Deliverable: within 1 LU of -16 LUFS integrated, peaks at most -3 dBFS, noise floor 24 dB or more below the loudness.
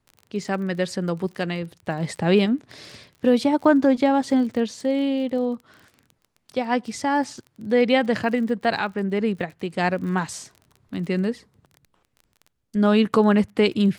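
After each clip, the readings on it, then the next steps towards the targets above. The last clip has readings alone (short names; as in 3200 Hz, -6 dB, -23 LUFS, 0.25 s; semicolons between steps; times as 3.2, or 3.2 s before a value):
ticks 29/s; loudness -22.5 LUFS; peak -6.0 dBFS; loudness target -16.0 LUFS
-> de-click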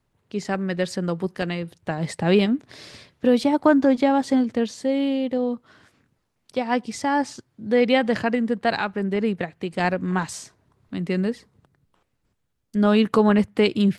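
ticks 0.14/s; loudness -22.5 LUFS; peak -6.0 dBFS; loudness target -16.0 LUFS
-> gain +6.5 dB; limiter -3 dBFS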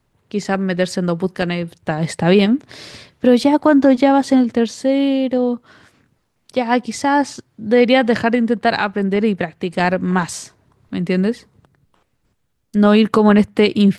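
loudness -16.5 LUFS; peak -3.0 dBFS; noise floor -66 dBFS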